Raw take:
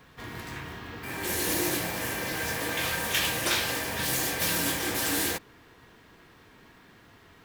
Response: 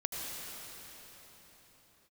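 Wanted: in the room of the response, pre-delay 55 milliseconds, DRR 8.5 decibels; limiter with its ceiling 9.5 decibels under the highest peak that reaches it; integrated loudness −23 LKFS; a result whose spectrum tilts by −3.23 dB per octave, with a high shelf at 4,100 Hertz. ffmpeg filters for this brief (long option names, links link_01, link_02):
-filter_complex "[0:a]highshelf=frequency=4100:gain=-6,alimiter=limit=-23.5dB:level=0:latency=1,asplit=2[link_01][link_02];[1:a]atrim=start_sample=2205,adelay=55[link_03];[link_02][link_03]afir=irnorm=-1:irlink=0,volume=-12.5dB[link_04];[link_01][link_04]amix=inputs=2:normalize=0,volume=9.5dB"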